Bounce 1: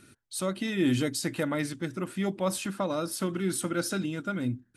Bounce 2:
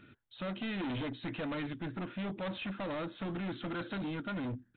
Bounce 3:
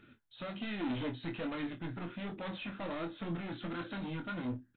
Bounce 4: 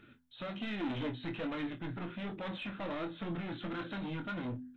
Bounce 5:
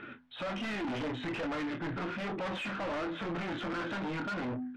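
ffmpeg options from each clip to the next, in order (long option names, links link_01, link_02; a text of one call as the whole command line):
ffmpeg -i in.wav -af "bandreject=frequency=380:width=12,aresample=8000,asoftclip=type=hard:threshold=-34dB,aresample=44100,volume=-1dB" out.wav
ffmpeg -i in.wav -filter_complex "[0:a]flanger=delay=2.2:depth=5.9:regen=59:speed=1.3:shape=triangular,asplit=2[link_01][link_02];[link_02]aecho=0:1:24|51:0.501|0.158[link_03];[link_01][link_03]amix=inputs=2:normalize=0,volume=1.5dB" out.wav
ffmpeg -i in.wav -filter_complex "[0:a]bandreject=frequency=83.77:width_type=h:width=4,bandreject=frequency=167.54:width_type=h:width=4,bandreject=frequency=251.31:width_type=h:width=4,asplit=2[link_01][link_02];[link_02]asoftclip=type=tanh:threshold=-37dB,volume=-6dB[link_03];[link_01][link_03]amix=inputs=2:normalize=0,volume=-2dB" out.wav
ffmpeg -i in.wav -filter_complex "[0:a]lowpass=2800,asplit=2[link_01][link_02];[link_02]highpass=frequency=720:poles=1,volume=22dB,asoftclip=type=tanh:threshold=-29dB[link_03];[link_01][link_03]amix=inputs=2:normalize=0,lowpass=frequency=1900:poles=1,volume=-6dB,asoftclip=type=tanh:threshold=-35.5dB,volume=4dB" out.wav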